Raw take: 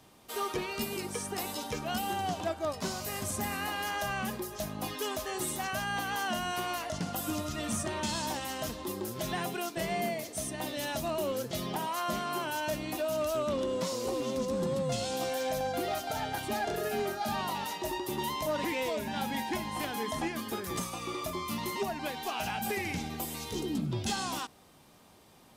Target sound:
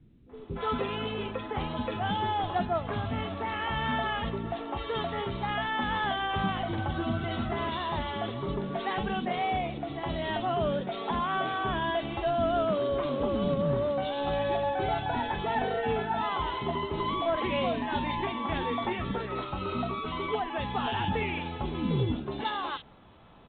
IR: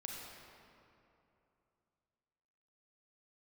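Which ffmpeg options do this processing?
-filter_complex "[0:a]lowshelf=f=68:g=11,acrossover=split=290|2200[s0][s1][s2];[s1]adelay=320[s3];[s2]adelay=370[s4];[s0][s3][s4]amix=inputs=3:normalize=0,asetrate=48000,aresample=44100,volume=1.68" -ar 8000 -c:a pcm_mulaw

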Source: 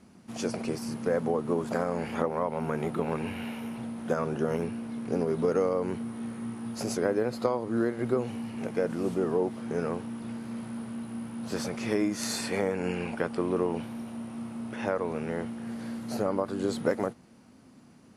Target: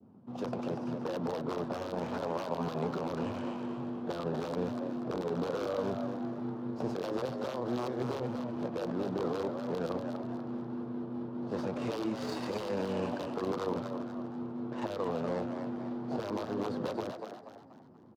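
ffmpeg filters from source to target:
-filter_complex "[0:a]asetrate=46722,aresample=44100,atempo=0.943874,asplit=2[s0][s1];[s1]acrusher=samples=32:mix=1:aa=0.000001:lfo=1:lforange=19.2:lforate=1.9,volume=0.266[s2];[s0][s2]amix=inputs=2:normalize=0,adynamicequalizer=threshold=0.00562:dfrequency=1800:dqfactor=0.74:tfrequency=1800:tqfactor=0.74:attack=5:release=100:ratio=0.375:range=2.5:mode=boostabove:tftype=bell,aeval=exprs='(mod(6.68*val(0)+1,2)-1)/6.68':c=same,highpass=f=88:w=0.5412,highpass=f=88:w=1.3066,acrossover=split=180|1000[s3][s4][s5];[s3]acontrast=34[s6];[s6][s4][s5]amix=inputs=3:normalize=0,alimiter=limit=0.1:level=0:latency=1:release=32,adynamicsmooth=sensitivity=4.5:basefreq=1200,equalizer=f=500:t=o:w=1:g=4,equalizer=f=1000:t=o:w=1:g=6,equalizer=f=2000:t=o:w=1:g=-9,equalizer=f=4000:t=o:w=1:g=5,asplit=6[s7][s8][s9][s10][s11][s12];[s8]adelay=241,afreqshift=100,volume=0.473[s13];[s9]adelay=482,afreqshift=200,volume=0.184[s14];[s10]adelay=723,afreqshift=300,volume=0.0716[s15];[s11]adelay=964,afreqshift=400,volume=0.0282[s16];[s12]adelay=1205,afreqshift=500,volume=0.011[s17];[s7][s13][s14][s15][s16][s17]amix=inputs=6:normalize=0,volume=0.473"

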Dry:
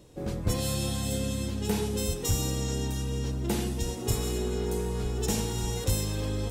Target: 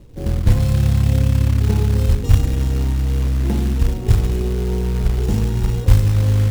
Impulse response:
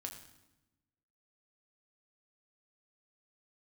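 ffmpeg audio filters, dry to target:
-filter_complex "[0:a]aemphasis=mode=reproduction:type=riaa,asplit=2[s0][s1];[1:a]atrim=start_sample=2205,adelay=27[s2];[s1][s2]afir=irnorm=-1:irlink=0,volume=0.668[s3];[s0][s3]amix=inputs=2:normalize=0,acrusher=bits=5:mode=log:mix=0:aa=0.000001"

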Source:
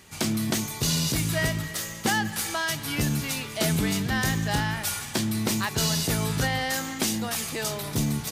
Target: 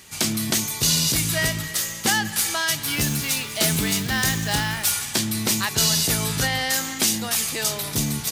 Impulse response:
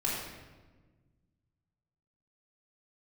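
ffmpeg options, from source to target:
-filter_complex "[0:a]highshelf=f=2000:g=8.5,asettb=1/sr,asplit=3[s0][s1][s2];[s0]atrim=end=2.834[s3];[s1]atrim=start=2.83:end=4.92,asetpts=PTS-STARTPTS,afade=t=in:d=0.004:c=qsin,afade=t=out:st=2.086:d=0.004:c=qsin,acrusher=bits=3:mode=log:mix=0:aa=0.000001[s4];[s2]atrim=start=4.916[s5];[s3][s4]acrossfade=d=0.004:c1=hsin:c2=qsin[s6];[s6][s5]acrossfade=d=0.004:c1=qsin:c2=hsin"

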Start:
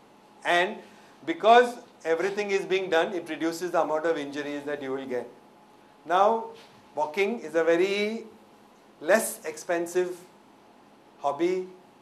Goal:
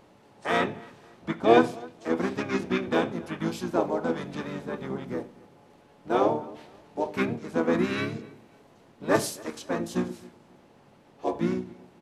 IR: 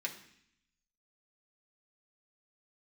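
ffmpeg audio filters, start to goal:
-filter_complex "[0:a]asplit=2[s0][s1];[s1]adelay=266,lowpass=f=4500:p=1,volume=0.0708,asplit=2[s2][s3];[s3]adelay=266,lowpass=f=4500:p=1,volume=0.36[s4];[s0][s2][s4]amix=inputs=3:normalize=0,asplit=4[s5][s6][s7][s8];[s6]asetrate=22050,aresample=44100,atempo=2,volume=0.794[s9];[s7]asetrate=29433,aresample=44100,atempo=1.49831,volume=0.891[s10];[s8]asetrate=37084,aresample=44100,atempo=1.18921,volume=0.398[s11];[s5][s9][s10][s11]amix=inputs=4:normalize=0,volume=0.531"

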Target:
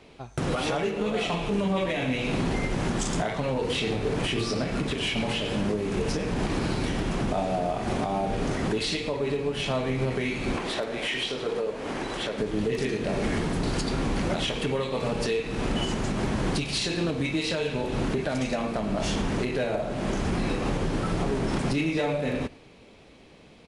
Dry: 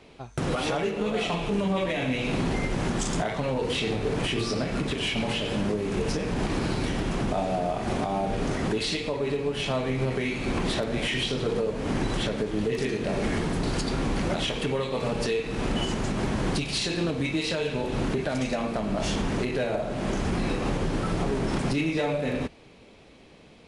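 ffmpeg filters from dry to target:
-filter_complex "[0:a]asettb=1/sr,asplit=3[s0][s1][s2];[s0]atrim=end=10.564[s3];[s1]atrim=start=10.56:end=12.38,asetpts=PTS-STARTPTS,afade=t=in:d=0.004:c=qsin,afade=t=out:st=1.816:d=0.004:c=qsin,bass=f=250:g=-13,treble=f=4000:g=-3[s4];[s2]atrim=start=12.376[s5];[s3][s4]acrossfade=d=0.004:c1=hsin:c2=qsin[s6];[s6][s5]acrossfade=d=0.004:c1=qsin:c2=hsin,asplit=2[s7][s8];[s8]aecho=0:1:110:0.075[s9];[s7][s9]amix=inputs=2:normalize=0"

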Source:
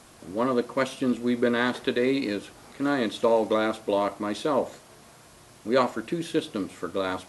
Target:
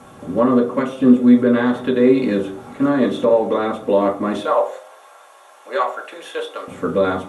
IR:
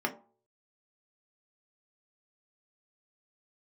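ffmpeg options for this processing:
-filter_complex "[0:a]asettb=1/sr,asplit=3[s0][s1][s2];[s0]atrim=end=4.384[s3];[s1]atrim=start=4.38:end=6.68,asetpts=PTS-STARTPTS,afade=t=in:d=0.004:c=qsin,afade=t=out:st=2.296:d=0.004:c=qsin,highpass=f=600:w=0.5412,highpass=f=600:w=1.3066[s4];[s2]atrim=start=6.676[s5];[s3][s4]acrossfade=d=0.004:c1=hsin:c2=qsin[s6];[s6][s5]acrossfade=d=0.004:c1=qsin:c2=hsin,alimiter=limit=0.133:level=0:latency=1:release=289[s7];[1:a]atrim=start_sample=2205,afade=t=out:st=0.31:d=0.01,atrim=end_sample=14112,asetrate=28665,aresample=44100[s8];[s7][s8]afir=irnorm=-1:irlink=0"

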